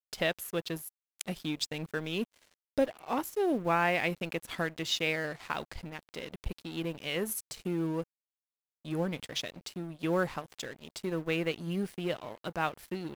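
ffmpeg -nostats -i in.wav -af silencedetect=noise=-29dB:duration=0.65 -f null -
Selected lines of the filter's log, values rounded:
silence_start: 8.02
silence_end: 8.90 | silence_duration: 0.88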